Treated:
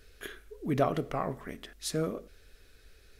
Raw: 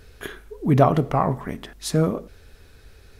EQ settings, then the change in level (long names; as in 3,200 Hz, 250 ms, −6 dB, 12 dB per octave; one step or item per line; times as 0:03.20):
parametric band 120 Hz −10 dB 2.3 octaves
parametric band 900 Hz −9.5 dB 0.72 octaves
−5.5 dB